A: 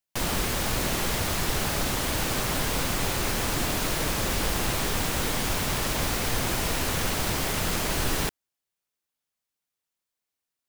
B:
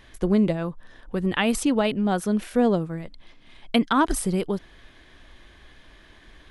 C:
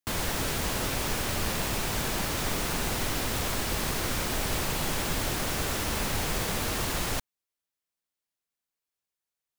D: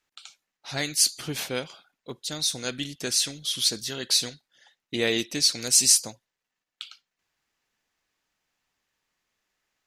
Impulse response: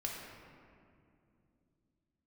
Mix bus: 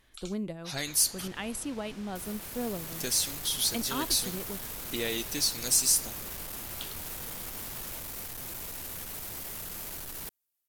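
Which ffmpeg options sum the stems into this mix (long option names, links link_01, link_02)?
-filter_complex "[0:a]alimiter=level_in=0.5dB:limit=-24dB:level=0:latency=1:release=31,volume=-0.5dB,dynaudnorm=framelen=180:gausssize=9:maxgain=8dB,asoftclip=type=tanh:threshold=-28.5dB,adelay=2000,volume=-13.5dB[link_01];[1:a]volume=-14.5dB[link_02];[2:a]lowpass=4900,adelay=800,volume=-19.5dB[link_03];[3:a]acompressor=threshold=-27dB:ratio=2,asoftclip=type=tanh:threshold=-16dB,volume=-4dB,asplit=3[link_04][link_05][link_06];[link_04]atrim=end=1.28,asetpts=PTS-STARTPTS,afade=type=out:start_time=1.276:duration=0.004:curve=hsin[link_07];[link_05]atrim=start=1.28:end=2.92,asetpts=PTS-STARTPTS,volume=0[link_08];[link_06]atrim=start=2.92,asetpts=PTS-STARTPTS,afade=type=in:duration=0.004:curve=hsin[link_09];[link_07][link_08][link_09]concat=n=3:v=0:a=1[link_10];[link_01][link_02][link_03][link_10]amix=inputs=4:normalize=0,equalizer=frequency=14000:width=0.57:gain=15"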